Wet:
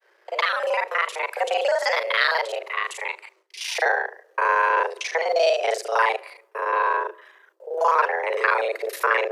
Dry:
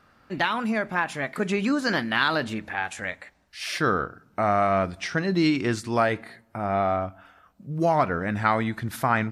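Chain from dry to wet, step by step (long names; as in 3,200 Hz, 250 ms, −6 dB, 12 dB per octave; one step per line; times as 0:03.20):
reversed piece by piece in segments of 35 ms
downward expander −55 dBFS
frequency shifter +330 Hz
level +2.5 dB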